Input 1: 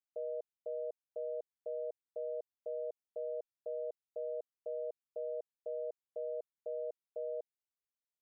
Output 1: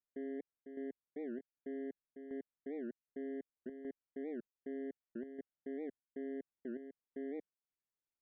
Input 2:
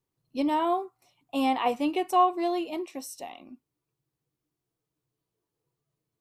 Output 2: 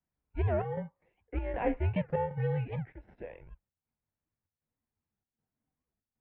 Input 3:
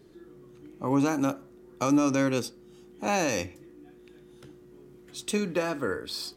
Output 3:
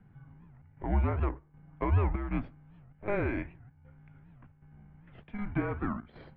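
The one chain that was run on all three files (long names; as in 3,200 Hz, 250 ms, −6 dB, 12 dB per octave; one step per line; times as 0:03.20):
in parallel at −10 dB: decimation without filtering 32×
on the sum: square-wave tremolo 1.3 Hz, depth 60%, duty 80%
single-sideband voice off tune −210 Hz 180–2,500 Hz
wow of a warped record 78 rpm, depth 250 cents
level −4 dB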